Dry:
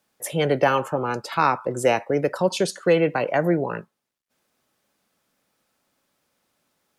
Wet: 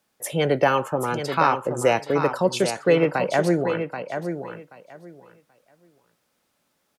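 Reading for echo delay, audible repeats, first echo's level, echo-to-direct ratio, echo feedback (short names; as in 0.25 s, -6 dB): 0.781 s, 2, -8.0 dB, -8.0 dB, 18%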